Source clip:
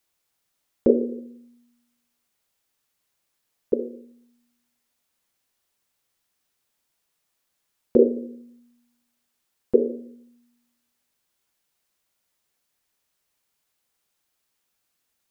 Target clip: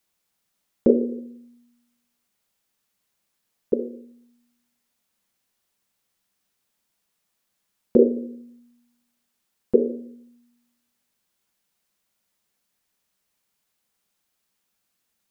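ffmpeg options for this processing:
ffmpeg -i in.wav -af "equalizer=frequency=200:width=4.7:gain=8.5" out.wav

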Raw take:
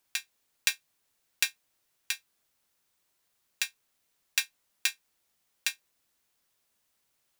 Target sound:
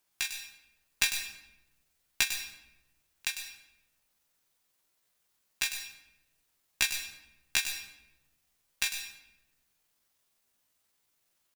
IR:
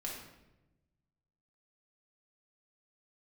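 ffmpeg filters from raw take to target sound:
-filter_complex "[0:a]aeval=exprs='(tanh(2.51*val(0)+0.5)-tanh(0.5))/2.51':channel_layout=same,atempo=0.64,asplit=2[link_01][link_02];[1:a]atrim=start_sample=2205,highshelf=frequency=4900:gain=8.5,adelay=99[link_03];[link_02][link_03]afir=irnorm=-1:irlink=0,volume=-9.5dB[link_04];[link_01][link_04]amix=inputs=2:normalize=0,volume=1dB"

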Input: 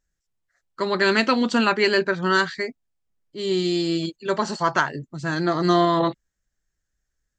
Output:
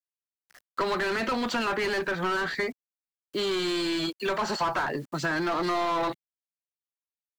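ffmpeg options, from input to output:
ffmpeg -i in.wav -filter_complex "[0:a]asplit=2[link_01][link_02];[link_02]highpass=frequency=720:poles=1,volume=27dB,asoftclip=type=tanh:threshold=-5.5dB[link_03];[link_01][link_03]amix=inputs=2:normalize=0,lowpass=frequency=1700:poles=1,volume=-6dB,acrusher=bits=7:mix=0:aa=0.000001,acrossover=split=160|880[link_04][link_05][link_06];[link_04]acompressor=threshold=-42dB:ratio=4[link_07];[link_05]acompressor=threshold=-28dB:ratio=4[link_08];[link_06]acompressor=threshold=-28dB:ratio=4[link_09];[link_07][link_08][link_09]amix=inputs=3:normalize=0,volume=-3dB" out.wav

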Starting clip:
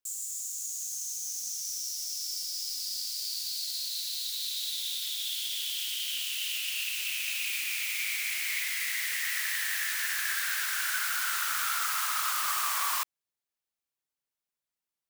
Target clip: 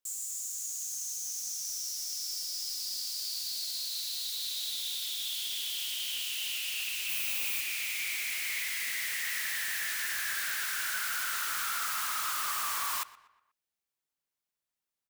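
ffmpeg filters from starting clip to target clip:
ffmpeg -i in.wav -filter_complex "[0:a]asettb=1/sr,asplit=3[link_01][link_02][link_03];[link_01]atrim=end=7.094[link_04];[link_02]atrim=start=7.09:end=7.61,asetpts=PTS-STARTPTS,afade=type=in:duration=0.004:curve=qsin,afade=type=out:start_time=0.516:duration=0.004:curve=qsin,highshelf=frequency=12000:gain=9.5[link_05];[link_03]atrim=start=7.606[link_06];[link_04][link_05]acrossfade=duration=0.004:curve1=hsin:curve2=qsin[link_07];[link_07][link_06]acrossfade=duration=0.004:curve1=qsin:curve2=hsin,asoftclip=type=tanh:threshold=-28dB,asplit=2[link_08][link_09];[link_09]adelay=121,lowpass=frequency=3200:poles=1,volume=-17dB,asplit=2[link_10][link_11];[link_11]adelay=121,lowpass=frequency=3200:poles=1,volume=0.48,asplit=2[link_12][link_13];[link_13]adelay=121,lowpass=frequency=3200:poles=1,volume=0.48,asplit=2[link_14][link_15];[link_15]adelay=121,lowpass=frequency=3200:poles=1,volume=0.48[link_16];[link_08][link_10][link_12][link_14][link_16]amix=inputs=5:normalize=0" out.wav

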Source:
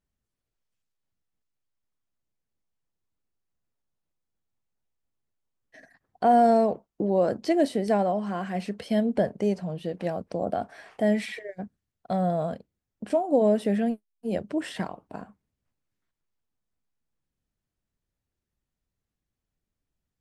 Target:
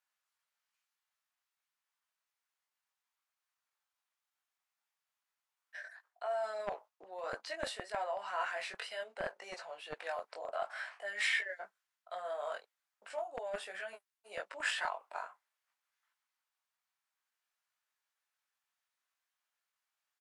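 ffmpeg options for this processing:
ffmpeg -i in.wav -filter_complex "[0:a]flanger=delay=18:depth=2.8:speed=0.62,areverse,acompressor=threshold=-33dB:ratio=8,areverse,highshelf=frequency=2100:gain=-10,acrossover=split=1000[link_01][link_02];[link_01]acrusher=bits=3:mix=0:aa=0.5[link_03];[link_03][link_02]amix=inputs=2:normalize=0,asetrate=41625,aresample=44100,atempo=1.05946,volume=14.5dB" out.wav

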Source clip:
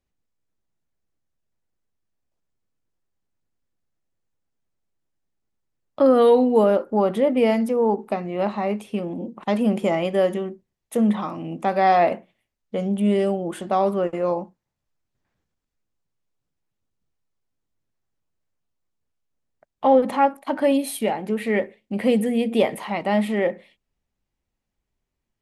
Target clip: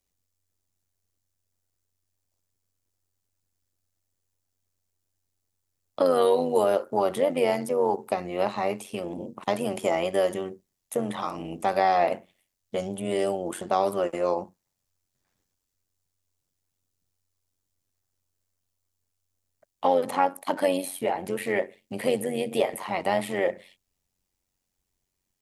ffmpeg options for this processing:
ffmpeg -i in.wav -filter_complex "[0:a]bass=frequency=250:gain=-3,treble=frequency=4000:gain=12,acrossover=split=370|2100[link_01][link_02][link_03];[link_01]acompressor=threshold=-36dB:ratio=4[link_04];[link_02]acompressor=threshold=-18dB:ratio=4[link_05];[link_03]acompressor=threshold=-38dB:ratio=4[link_06];[link_04][link_05][link_06]amix=inputs=3:normalize=0,tremolo=f=92:d=0.71,volume=2dB" out.wav

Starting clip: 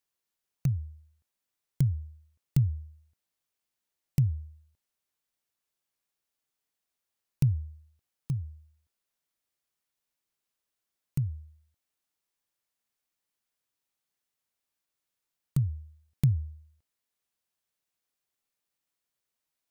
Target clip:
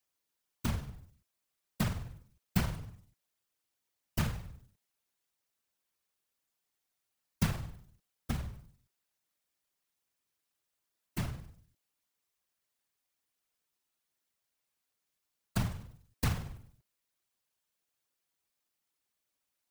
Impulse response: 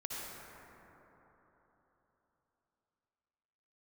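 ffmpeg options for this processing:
-filter_complex "[0:a]acrusher=bits=3:mode=log:mix=0:aa=0.000001,acrossover=split=420|3000[link_01][link_02][link_03];[link_01]acompressor=threshold=-35dB:ratio=2.5[link_04];[link_04][link_02][link_03]amix=inputs=3:normalize=0,afftfilt=real='hypot(re,im)*cos(2*PI*random(0))':imag='hypot(re,im)*sin(2*PI*random(1))':win_size=512:overlap=0.75,volume=7.5dB"

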